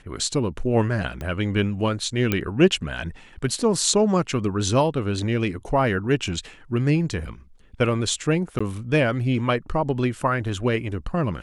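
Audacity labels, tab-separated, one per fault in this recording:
1.210000	1.210000	click −19 dBFS
2.320000	2.320000	click −8 dBFS
8.590000	8.610000	drop-out 15 ms

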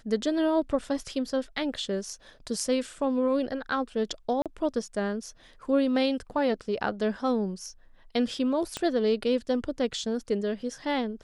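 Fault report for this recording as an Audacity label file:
4.420000	4.460000	drop-out 37 ms
8.770000	8.770000	click −17 dBFS

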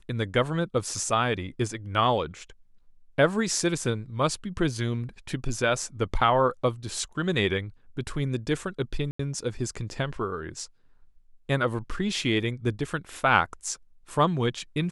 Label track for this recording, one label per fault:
9.110000	9.190000	drop-out 84 ms

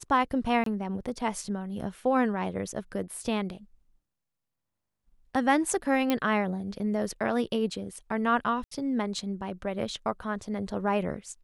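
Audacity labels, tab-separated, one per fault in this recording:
0.640000	0.660000	drop-out 23 ms
6.100000	6.100000	click −12 dBFS
8.640000	8.710000	drop-out 74 ms

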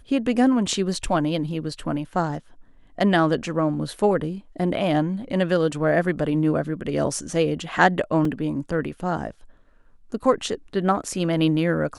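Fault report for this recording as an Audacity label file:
8.250000	8.250000	drop-out 3.1 ms

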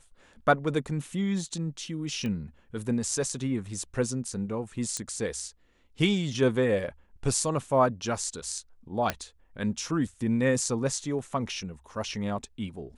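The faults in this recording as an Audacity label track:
2.260000	2.260000	click −22 dBFS
4.970000	4.970000	click −18 dBFS
9.100000	9.100000	click −11 dBFS

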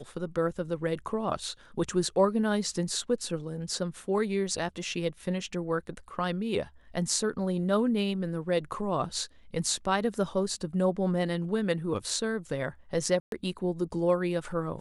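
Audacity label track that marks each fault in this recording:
13.200000	13.320000	drop-out 122 ms

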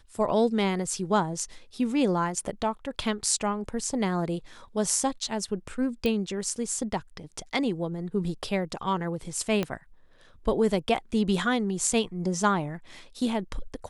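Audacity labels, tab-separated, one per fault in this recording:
6.060000	6.060000	click −16 dBFS
9.630000	9.630000	click −14 dBFS

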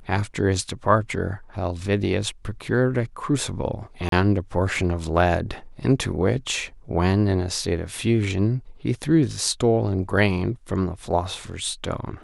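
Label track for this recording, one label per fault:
4.090000	4.120000	drop-out 32 ms

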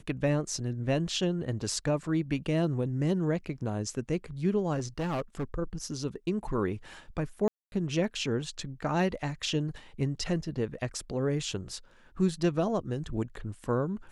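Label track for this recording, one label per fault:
4.780000	5.440000	clipping −28 dBFS
7.480000	7.720000	drop-out 241 ms

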